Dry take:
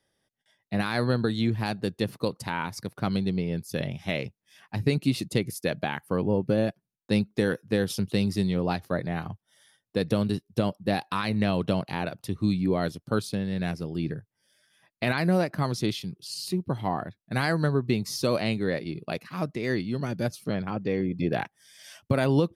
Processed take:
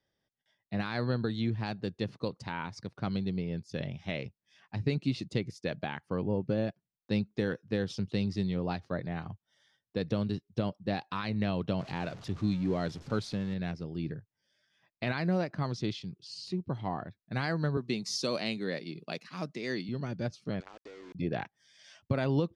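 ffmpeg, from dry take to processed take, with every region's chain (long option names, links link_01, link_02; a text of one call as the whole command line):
ffmpeg -i in.wav -filter_complex "[0:a]asettb=1/sr,asplit=3[link_01][link_02][link_03];[link_01]atrim=end=11.794[link_04];[link_02]atrim=start=11.79:end=13.54,asetpts=PTS-STARTPTS,afade=type=in:duration=0.004:curve=qsin,afade=type=out:start_time=1.746:duration=0.004:curve=qsin,aeval=exprs='val(0)+0.5*0.0141*sgn(val(0))':channel_layout=same,equalizer=frequency=12000:width=1.7:gain=11[link_05];[link_03]atrim=start=13.536[link_06];[link_04][link_05]acrossfade=duration=0.004:curve1=hsin:curve2=qsin[link_07];[link_07][link_06]acrossfade=duration=0.004:curve1=qsin:curve2=hsin,asettb=1/sr,asplit=3[link_08][link_09][link_10];[link_08]atrim=end=17.774[link_11];[link_09]atrim=start=17.77:end=19.89,asetpts=PTS-STARTPTS,afade=type=in:duration=0.004:curve=qsin,afade=type=out:start_time=2.116:duration=0.004:curve=qsin,highpass=frequency=150:width=0.5412,highpass=frequency=150:width=1.3066,aemphasis=mode=production:type=75fm[link_12];[link_10]atrim=start=19.886[link_13];[link_11][link_12]acrossfade=duration=0.004:curve1=hsin:curve2=qsin[link_14];[link_14][link_13]acrossfade=duration=0.004:curve1=qsin:curve2=hsin,asettb=1/sr,asplit=3[link_15][link_16][link_17];[link_15]atrim=end=20.604[link_18];[link_16]atrim=start=20.6:end=21.15,asetpts=PTS-STARTPTS,afade=type=in:duration=0.004:curve=qsin,afade=type=out:start_time=0.546:duration=0.004:curve=qsin,highpass=frequency=350:width=0.5412,highpass=frequency=350:width=1.3066,acompressor=threshold=-37dB:ratio=16:attack=3.2:release=140:knee=1:detection=peak,aeval=exprs='val(0)*gte(abs(val(0)),0.0075)':channel_layout=same[link_19];[link_17]atrim=start=21.146[link_20];[link_18][link_19]acrossfade=duration=0.004:curve1=hsin:curve2=qsin[link_21];[link_21][link_20]acrossfade=duration=0.004:curve1=qsin:curve2=hsin,lowpass=frequency=6300:width=0.5412,lowpass=frequency=6300:width=1.3066,equalizer=frequency=69:width_type=o:width=2.7:gain=3,volume=-7dB" out.wav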